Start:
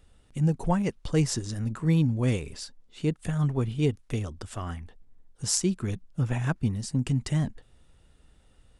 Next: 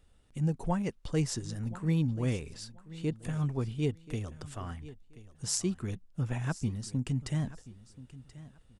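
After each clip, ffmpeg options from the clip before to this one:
-af "aecho=1:1:1031|2062:0.133|0.0293,volume=-5.5dB"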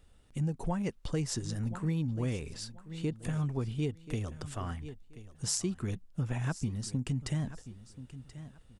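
-af "acompressor=threshold=-31dB:ratio=5,volume=2.5dB"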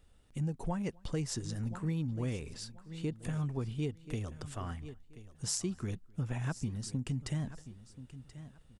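-filter_complex "[0:a]asplit=2[a][b];[b]adelay=256.6,volume=-28dB,highshelf=f=4k:g=-5.77[c];[a][c]amix=inputs=2:normalize=0,volume=-2.5dB"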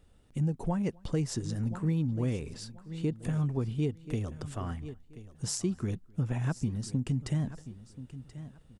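-af "equalizer=f=230:w=0.3:g=5.5"

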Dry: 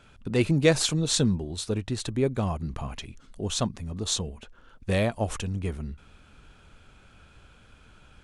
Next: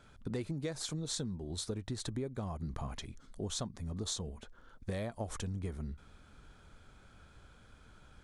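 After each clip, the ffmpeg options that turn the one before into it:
-af "equalizer=f=2.7k:w=4.5:g=-10,acompressor=threshold=-30dB:ratio=16,volume=-4dB"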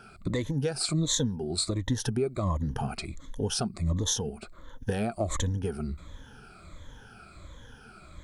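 -af "afftfilt=real='re*pow(10,16/40*sin(2*PI*(1.1*log(max(b,1)*sr/1024/100)/log(2)-(-1.4)*(pts-256)/sr)))':imag='im*pow(10,16/40*sin(2*PI*(1.1*log(max(b,1)*sr/1024/100)/log(2)-(-1.4)*(pts-256)/sr)))':win_size=1024:overlap=0.75,volume=7dB"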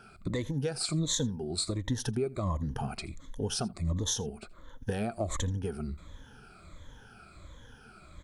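-af "aecho=1:1:82:0.0708,volume=-3dB"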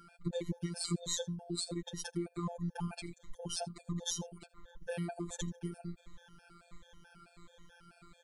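-af "afftfilt=real='hypot(re,im)*cos(PI*b)':imag='0':win_size=1024:overlap=0.75,afftfilt=real='re*gt(sin(2*PI*4.6*pts/sr)*(1-2*mod(floor(b*sr/1024/460),2)),0)':imag='im*gt(sin(2*PI*4.6*pts/sr)*(1-2*mod(floor(b*sr/1024/460),2)),0)':win_size=1024:overlap=0.75,volume=1dB"

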